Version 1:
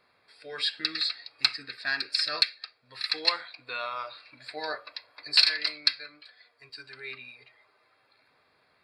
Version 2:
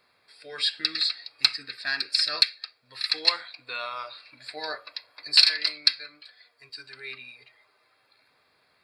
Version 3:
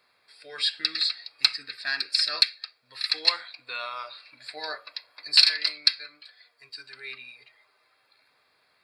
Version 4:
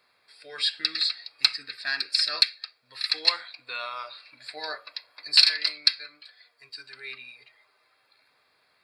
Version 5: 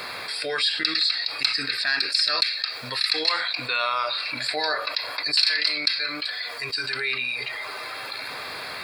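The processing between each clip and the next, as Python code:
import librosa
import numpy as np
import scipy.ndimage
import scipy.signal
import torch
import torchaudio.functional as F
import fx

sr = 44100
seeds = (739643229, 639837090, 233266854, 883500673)

y1 = fx.high_shelf(x, sr, hz=3800.0, db=8.0)
y1 = y1 * librosa.db_to_amplitude(-1.0)
y2 = fx.low_shelf(y1, sr, hz=430.0, db=-6.0)
y3 = y2
y4 = fx.env_flatten(y3, sr, amount_pct=70)
y4 = y4 * librosa.db_to_amplitude(-5.5)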